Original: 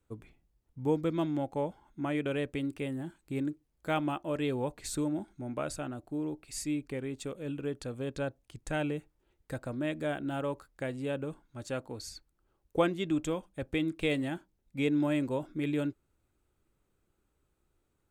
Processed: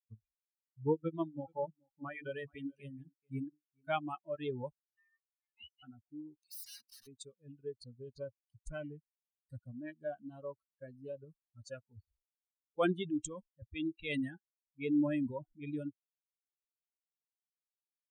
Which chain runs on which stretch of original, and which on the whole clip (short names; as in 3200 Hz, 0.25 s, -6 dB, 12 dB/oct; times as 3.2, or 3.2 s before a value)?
0.93–3.9 notches 50/100/150/200/250/300/350/400/450 Hz + echo 0.427 s -11 dB
4.77–5.83 auto-wah 560–1500 Hz, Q 2.5, up, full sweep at -33.5 dBFS + ring modulator 1500 Hz + mismatched tape noise reduction decoder only
6.4–7.07 G.711 law mismatch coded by mu + BPF 210–7900 Hz + wrapped overs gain 38 dB
7.8–11.2 bell 1900 Hz -4.5 dB 1.3 oct + Doppler distortion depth 0.24 ms
11.93–15.63 transient shaper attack -5 dB, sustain +5 dB + low-pass opened by the level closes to 510 Hz, open at -28 dBFS
whole clip: per-bin expansion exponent 3; notch 820 Hz, Q 23; gain +1.5 dB